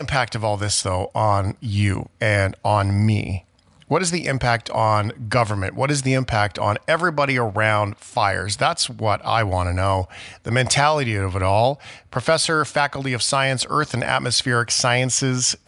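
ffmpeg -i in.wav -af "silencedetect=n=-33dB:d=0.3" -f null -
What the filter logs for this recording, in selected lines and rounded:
silence_start: 3.39
silence_end: 3.82 | silence_duration: 0.43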